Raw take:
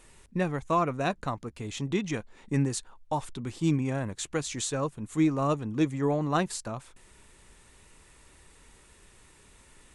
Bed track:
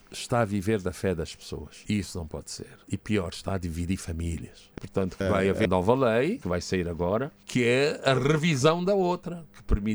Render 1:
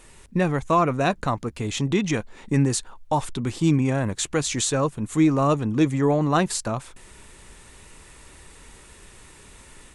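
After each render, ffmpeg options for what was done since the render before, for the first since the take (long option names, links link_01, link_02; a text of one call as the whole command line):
ffmpeg -i in.wav -filter_complex "[0:a]asplit=2[link_01][link_02];[link_02]alimiter=level_in=0.5dB:limit=-24dB:level=0:latency=1:release=27,volume=-0.5dB,volume=0dB[link_03];[link_01][link_03]amix=inputs=2:normalize=0,dynaudnorm=framelen=190:gausssize=3:maxgain=3dB" out.wav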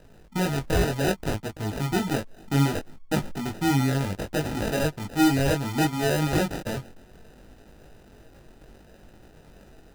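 ffmpeg -i in.wav -af "acrusher=samples=40:mix=1:aa=0.000001,flanger=delay=19:depth=3.2:speed=0.65" out.wav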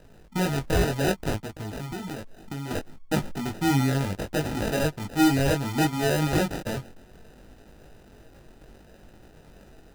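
ffmpeg -i in.wav -filter_complex "[0:a]asettb=1/sr,asplit=3[link_01][link_02][link_03];[link_01]atrim=end=1.444[link_04];[link_02]atrim=start=1.44:end=2.71,asetpts=PTS-STARTPTS,afade=type=in:duration=0.004:curve=qsin,afade=type=out:start_time=1.266:duration=0.004:curve=qsin,acompressor=threshold=-30dB:ratio=10:attack=3.2:release=140:knee=1:detection=peak[link_05];[link_03]atrim=start=2.706[link_06];[link_04][link_05]acrossfade=duration=0.004:curve1=hsin:curve2=qsin[link_07];[link_07][link_06]acrossfade=duration=0.004:curve1=qsin:curve2=hsin" out.wav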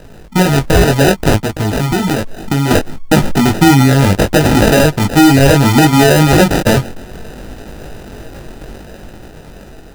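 ffmpeg -i in.wav -af "dynaudnorm=framelen=400:gausssize=7:maxgain=5dB,alimiter=level_in=15.5dB:limit=-1dB:release=50:level=0:latency=1" out.wav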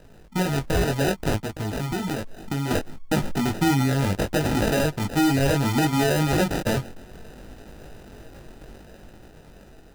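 ffmpeg -i in.wav -af "volume=-13dB" out.wav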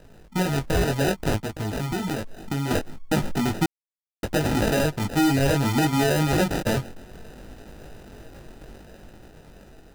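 ffmpeg -i in.wav -filter_complex "[0:a]asplit=3[link_01][link_02][link_03];[link_01]atrim=end=3.66,asetpts=PTS-STARTPTS,afade=type=out:start_time=3.656:duration=0.004:curve=hsin[link_04];[link_02]atrim=start=3.66:end=4.23,asetpts=PTS-STARTPTS,volume=0[link_05];[link_03]atrim=start=4.23,asetpts=PTS-STARTPTS,afade=type=in:duration=0.004:curve=hsin[link_06];[link_04][link_05][link_06]concat=n=3:v=0:a=1" out.wav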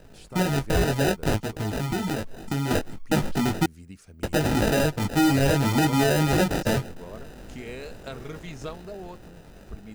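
ffmpeg -i in.wav -i bed.wav -filter_complex "[1:a]volume=-15.5dB[link_01];[0:a][link_01]amix=inputs=2:normalize=0" out.wav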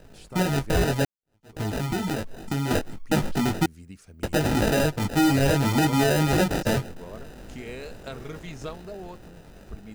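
ffmpeg -i in.wav -filter_complex "[0:a]asplit=2[link_01][link_02];[link_01]atrim=end=1.05,asetpts=PTS-STARTPTS,afade=type=out:start_time=1.046:duration=0.004:curve=hsin[link_03];[link_02]atrim=start=1.05,asetpts=PTS-STARTPTS,afade=type=in:duration=0.53:curve=exp[link_04];[link_03][link_04]concat=n=2:v=0:a=1" out.wav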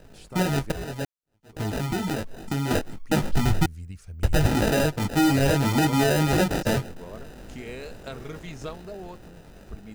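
ffmpeg -i in.wav -filter_complex "[0:a]asplit=3[link_01][link_02][link_03];[link_01]afade=type=out:start_time=3.33:duration=0.02[link_04];[link_02]asubboost=boost=8:cutoff=95,afade=type=in:start_time=3.33:duration=0.02,afade=type=out:start_time=4.46:duration=0.02[link_05];[link_03]afade=type=in:start_time=4.46:duration=0.02[link_06];[link_04][link_05][link_06]amix=inputs=3:normalize=0,asplit=2[link_07][link_08];[link_07]atrim=end=0.72,asetpts=PTS-STARTPTS,afade=type=out:start_time=0.716:duration=0.004:curve=hsin:silence=0.16788[link_09];[link_08]atrim=start=0.72,asetpts=PTS-STARTPTS,afade=type=in:duration=0.9:silence=0.16788[link_10];[link_09][link_10]concat=n=2:v=0:a=1" out.wav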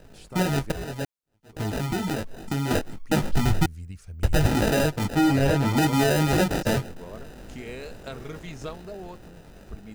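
ffmpeg -i in.wav -filter_complex "[0:a]asettb=1/sr,asplit=3[link_01][link_02][link_03];[link_01]atrim=end=5.154[link_04];[link_02]atrim=start=5.15:end=5.77,asetpts=PTS-STARTPTS,afade=type=in:duration=0.004:curve=qsin,afade=type=out:start_time=0.616:duration=0.004:curve=qsin,highshelf=frequency=3800:gain=-7[link_05];[link_03]atrim=start=5.766[link_06];[link_04][link_05]acrossfade=duration=0.004:curve1=hsin:curve2=qsin[link_07];[link_07][link_06]acrossfade=duration=0.004:curve1=qsin:curve2=hsin" out.wav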